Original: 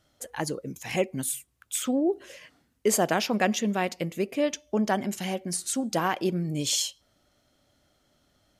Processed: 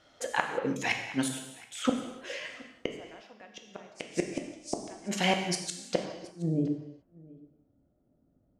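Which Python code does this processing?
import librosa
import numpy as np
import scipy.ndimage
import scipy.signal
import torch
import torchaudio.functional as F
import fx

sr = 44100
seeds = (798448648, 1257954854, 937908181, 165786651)

y = fx.bass_treble(x, sr, bass_db=-11, treble_db=-5)
y = fx.level_steps(y, sr, step_db=23, at=(1.28, 1.85))
y = fx.dmg_noise_band(y, sr, seeds[0], low_hz=4900.0, high_hz=9700.0, level_db=-45.0, at=(3.94, 5.07), fade=0.02)
y = fx.gate_flip(y, sr, shuts_db=-22.0, range_db=-36)
y = fx.filter_sweep_lowpass(y, sr, from_hz=6100.0, to_hz=240.0, start_s=5.81, end_s=6.72, q=0.77)
y = y + 10.0 ** (-23.0 / 20.0) * np.pad(y, (int(722 * sr / 1000.0), 0))[:len(y)]
y = fx.rev_gated(y, sr, seeds[1], gate_ms=370, shape='falling', drr_db=3.5)
y = fx.band_squash(y, sr, depth_pct=40, at=(2.92, 3.33))
y = F.gain(torch.from_numpy(y), 8.5).numpy()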